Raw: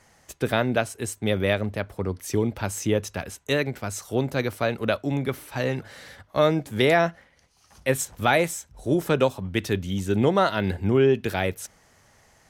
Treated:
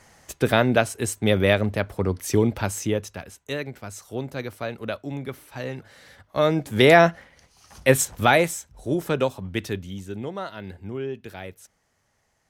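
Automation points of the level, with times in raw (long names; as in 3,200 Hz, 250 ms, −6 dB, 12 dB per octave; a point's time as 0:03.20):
0:02.54 +4 dB
0:03.26 −6 dB
0:06.00 −6 dB
0:06.95 +6 dB
0:07.95 +6 dB
0:08.90 −2 dB
0:09.61 −2 dB
0:10.24 −12 dB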